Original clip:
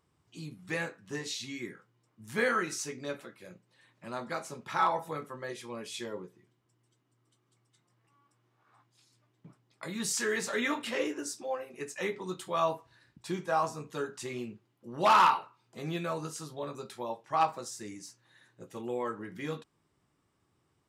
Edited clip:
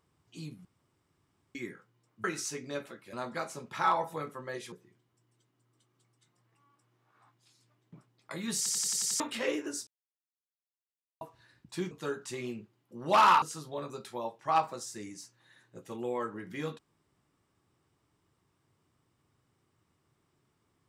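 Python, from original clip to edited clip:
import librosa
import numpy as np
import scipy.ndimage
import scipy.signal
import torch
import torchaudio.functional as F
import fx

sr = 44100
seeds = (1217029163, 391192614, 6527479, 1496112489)

y = fx.edit(x, sr, fx.room_tone_fill(start_s=0.65, length_s=0.9),
    fx.cut(start_s=2.24, length_s=0.34),
    fx.cut(start_s=3.47, length_s=0.61),
    fx.cut(start_s=5.67, length_s=0.57),
    fx.stutter_over(start_s=10.09, slice_s=0.09, count=7),
    fx.silence(start_s=11.39, length_s=1.34),
    fx.cut(start_s=13.43, length_s=0.4),
    fx.cut(start_s=15.34, length_s=0.93), tone=tone)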